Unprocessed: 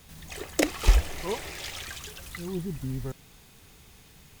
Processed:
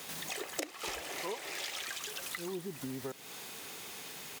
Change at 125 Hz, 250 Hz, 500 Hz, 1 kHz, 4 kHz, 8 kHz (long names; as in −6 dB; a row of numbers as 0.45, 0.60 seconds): −19.0, −9.5, −7.0, −4.5, −2.5, −2.5 decibels